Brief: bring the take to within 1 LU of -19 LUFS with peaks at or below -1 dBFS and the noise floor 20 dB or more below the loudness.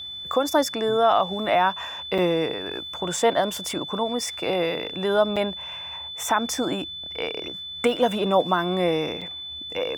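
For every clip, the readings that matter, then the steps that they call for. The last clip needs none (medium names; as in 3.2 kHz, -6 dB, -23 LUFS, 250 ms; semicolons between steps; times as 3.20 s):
dropouts 3; longest dropout 5.5 ms; steady tone 3.5 kHz; tone level -33 dBFS; loudness -24.5 LUFS; peak level -8.5 dBFS; loudness target -19.0 LUFS
-> interpolate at 2.18/5.36/9.21 s, 5.5 ms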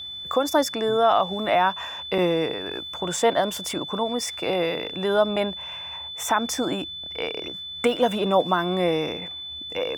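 dropouts 0; steady tone 3.5 kHz; tone level -33 dBFS
-> band-stop 3.5 kHz, Q 30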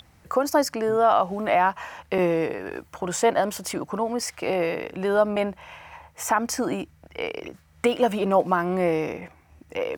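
steady tone not found; loudness -24.5 LUFS; peak level -9.0 dBFS; loudness target -19.0 LUFS
-> trim +5.5 dB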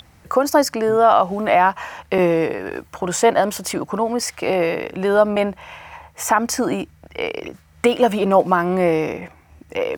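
loudness -19.0 LUFS; peak level -3.5 dBFS; noise floor -51 dBFS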